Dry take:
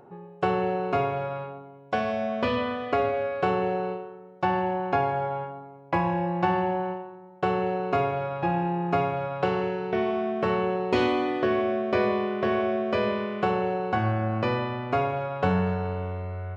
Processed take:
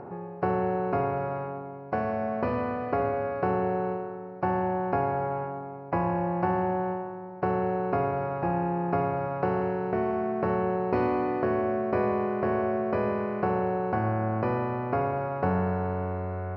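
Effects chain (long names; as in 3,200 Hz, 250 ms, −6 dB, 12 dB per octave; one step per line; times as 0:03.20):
compressor on every frequency bin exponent 0.6
moving average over 13 samples
level −4 dB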